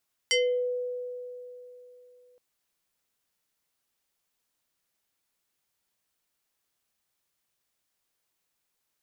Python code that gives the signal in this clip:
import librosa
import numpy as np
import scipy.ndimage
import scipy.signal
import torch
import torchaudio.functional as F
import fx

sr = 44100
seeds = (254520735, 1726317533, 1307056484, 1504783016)

y = fx.fm2(sr, length_s=2.07, level_db=-20.0, carrier_hz=495.0, ratio=5.18, index=2.6, index_s=0.37, decay_s=3.3, shape='exponential')